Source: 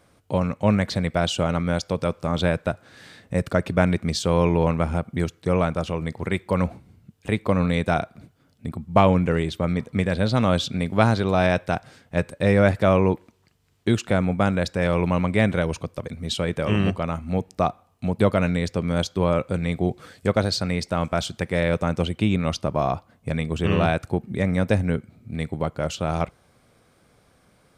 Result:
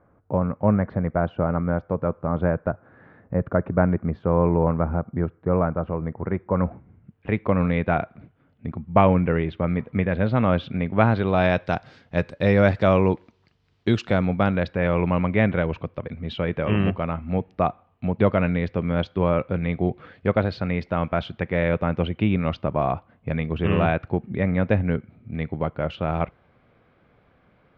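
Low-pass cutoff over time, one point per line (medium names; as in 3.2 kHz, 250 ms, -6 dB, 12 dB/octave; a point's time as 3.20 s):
low-pass 24 dB/octave
6.49 s 1.5 kHz
7.36 s 2.6 kHz
10.97 s 2.6 kHz
11.74 s 4.9 kHz
14.21 s 4.9 kHz
14.77 s 2.9 kHz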